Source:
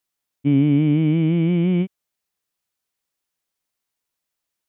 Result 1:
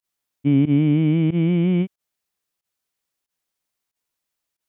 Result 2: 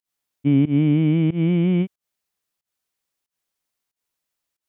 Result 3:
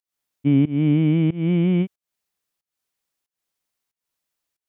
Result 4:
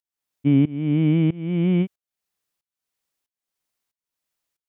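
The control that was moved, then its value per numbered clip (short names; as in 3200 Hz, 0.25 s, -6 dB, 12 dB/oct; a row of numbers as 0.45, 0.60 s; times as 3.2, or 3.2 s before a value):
pump, release: 78, 149, 261, 528 ms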